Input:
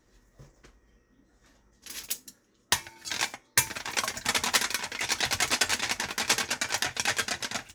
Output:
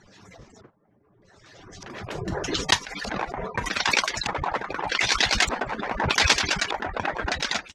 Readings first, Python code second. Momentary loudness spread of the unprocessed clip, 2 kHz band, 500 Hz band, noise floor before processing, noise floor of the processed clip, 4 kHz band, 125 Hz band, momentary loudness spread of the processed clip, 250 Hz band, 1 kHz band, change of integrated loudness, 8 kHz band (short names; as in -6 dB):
10 LU, +4.5 dB, +9.0 dB, -67 dBFS, -62 dBFS, +4.0 dB, +11.0 dB, 12 LU, +8.5 dB, +7.0 dB, +3.5 dB, -2.5 dB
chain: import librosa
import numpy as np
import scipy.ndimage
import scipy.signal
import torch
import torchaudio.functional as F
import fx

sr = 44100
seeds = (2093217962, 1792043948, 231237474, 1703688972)

y = fx.hpss_only(x, sr, part='percussive')
y = fx.filter_lfo_lowpass(y, sr, shape='square', hz=0.82, low_hz=960.0, high_hz=4800.0, q=0.96)
y = fx.pre_swell(y, sr, db_per_s=28.0)
y = y * librosa.db_to_amplitude(5.5)